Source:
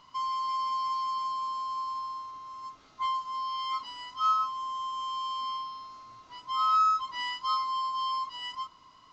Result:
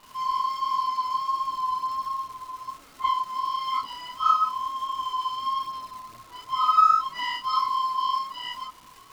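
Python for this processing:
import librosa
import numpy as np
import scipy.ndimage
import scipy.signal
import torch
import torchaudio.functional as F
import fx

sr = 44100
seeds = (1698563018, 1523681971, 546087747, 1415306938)

y = fx.high_shelf(x, sr, hz=2900.0, db=-6.5)
y = fx.dmg_crackle(y, sr, seeds[0], per_s=480.0, level_db=-45.0)
y = fx.chorus_voices(y, sr, voices=2, hz=1.3, base_ms=29, depth_ms=3.0, mix_pct=65)
y = F.gain(torch.from_numpy(y), 9.0).numpy()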